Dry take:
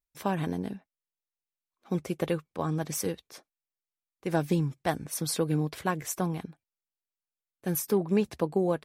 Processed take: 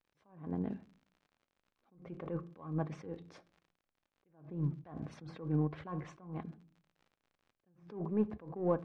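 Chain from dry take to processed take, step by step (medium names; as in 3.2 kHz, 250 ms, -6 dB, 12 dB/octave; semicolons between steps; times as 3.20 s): low-pass that closes with the level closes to 1.4 kHz, closed at -26.5 dBFS; dynamic bell 1.1 kHz, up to +7 dB, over -52 dBFS, Q 5; in parallel at -9.5 dB: saturation -29 dBFS, distortion -8 dB; on the sum: crackle 61 per s -42 dBFS; tape spacing loss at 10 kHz 23 dB; on a send at -15 dB: reverberation RT60 0.45 s, pre-delay 4 ms; on the sum: attacks held to a fixed rise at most 120 dB/s; trim -4 dB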